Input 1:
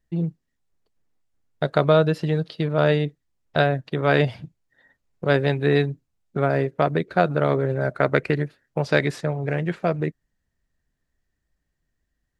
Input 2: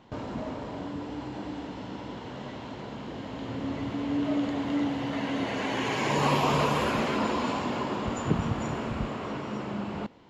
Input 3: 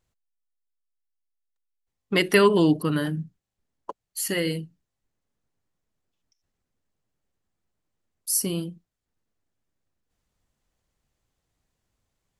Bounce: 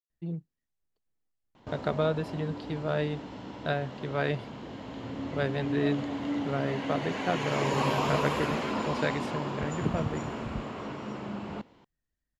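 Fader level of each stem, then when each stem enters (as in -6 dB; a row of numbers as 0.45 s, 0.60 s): -10.5 dB, -3.5 dB, mute; 0.10 s, 1.55 s, mute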